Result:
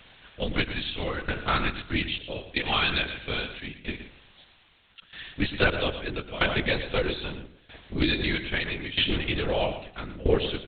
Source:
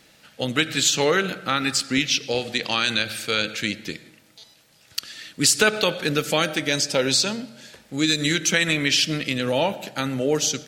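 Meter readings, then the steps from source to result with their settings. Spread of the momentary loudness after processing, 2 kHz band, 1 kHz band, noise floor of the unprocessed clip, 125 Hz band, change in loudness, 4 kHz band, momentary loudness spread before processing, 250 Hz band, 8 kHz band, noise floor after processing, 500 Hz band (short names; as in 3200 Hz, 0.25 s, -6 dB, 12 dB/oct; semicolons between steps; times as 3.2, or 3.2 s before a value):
13 LU, -5.0 dB, -4.0 dB, -55 dBFS, -2.0 dB, -6.5 dB, -7.0 dB, 13 LU, -6.0 dB, under -40 dB, -59 dBFS, -5.5 dB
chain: added noise blue -40 dBFS; LPC vocoder at 8 kHz whisper; on a send: echo 0.117 s -10.5 dB; on the sum: tremolo saw down 0.78 Hz, depth 85%; Doppler distortion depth 0.12 ms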